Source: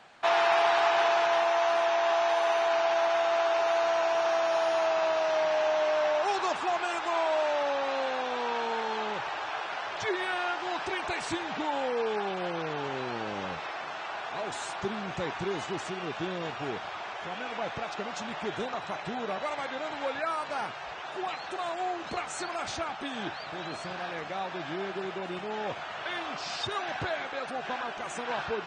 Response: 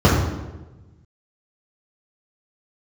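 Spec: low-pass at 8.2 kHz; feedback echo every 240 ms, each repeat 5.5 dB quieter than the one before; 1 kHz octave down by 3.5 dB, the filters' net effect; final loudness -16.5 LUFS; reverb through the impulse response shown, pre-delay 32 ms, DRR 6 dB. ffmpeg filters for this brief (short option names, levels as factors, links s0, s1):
-filter_complex "[0:a]lowpass=8200,equalizer=f=1000:t=o:g=-5,aecho=1:1:240|480|720|960|1200|1440|1680:0.531|0.281|0.149|0.079|0.0419|0.0222|0.0118,asplit=2[s0][s1];[1:a]atrim=start_sample=2205,adelay=32[s2];[s1][s2]afir=irnorm=-1:irlink=0,volume=0.0299[s3];[s0][s3]amix=inputs=2:normalize=0,volume=4.22"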